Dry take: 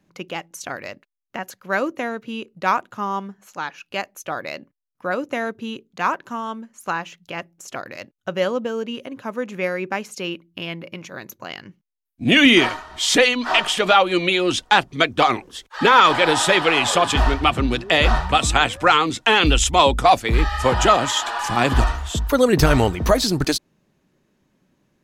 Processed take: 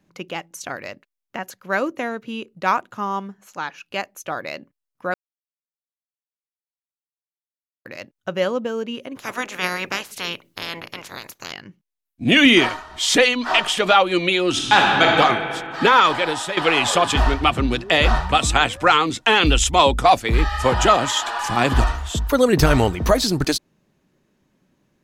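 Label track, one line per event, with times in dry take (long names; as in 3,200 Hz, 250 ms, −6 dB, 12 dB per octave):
5.140000	7.850000	silence
9.150000	11.510000	ceiling on every frequency bin ceiling under each frame's peak by 28 dB
14.500000	15.090000	thrown reverb, RT60 2.5 s, DRR −2.5 dB
15.850000	16.570000	fade out, to −12.5 dB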